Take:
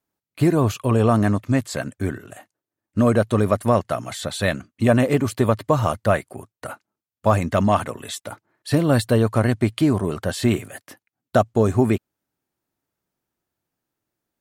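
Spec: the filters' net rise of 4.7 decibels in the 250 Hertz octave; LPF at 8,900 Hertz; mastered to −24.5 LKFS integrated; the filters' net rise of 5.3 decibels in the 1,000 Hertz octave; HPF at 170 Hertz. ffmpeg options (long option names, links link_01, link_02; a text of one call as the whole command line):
ffmpeg -i in.wav -af "highpass=170,lowpass=8900,equalizer=frequency=250:width_type=o:gain=6.5,equalizer=frequency=1000:width_type=o:gain=6.5,volume=-6.5dB" out.wav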